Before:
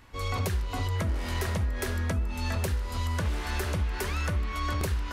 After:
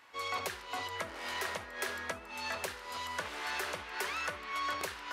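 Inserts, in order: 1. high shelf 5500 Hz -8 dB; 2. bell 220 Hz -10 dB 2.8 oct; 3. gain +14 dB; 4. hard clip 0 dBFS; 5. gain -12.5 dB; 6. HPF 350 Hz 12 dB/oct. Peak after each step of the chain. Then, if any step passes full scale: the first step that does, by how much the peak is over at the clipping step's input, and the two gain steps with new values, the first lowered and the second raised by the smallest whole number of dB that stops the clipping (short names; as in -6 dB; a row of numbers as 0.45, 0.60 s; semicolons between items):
-18.5, -20.0, -6.0, -6.0, -18.5, -20.5 dBFS; no overload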